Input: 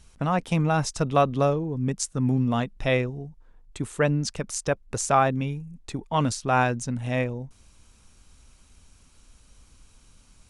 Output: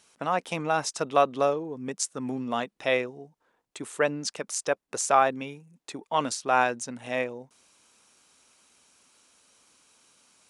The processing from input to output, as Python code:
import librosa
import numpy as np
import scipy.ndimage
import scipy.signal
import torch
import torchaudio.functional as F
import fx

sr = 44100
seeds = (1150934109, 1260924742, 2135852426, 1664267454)

y = scipy.signal.sosfilt(scipy.signal.butter(2, 370.0, 'highpass', fs=sr, output='sos'), x)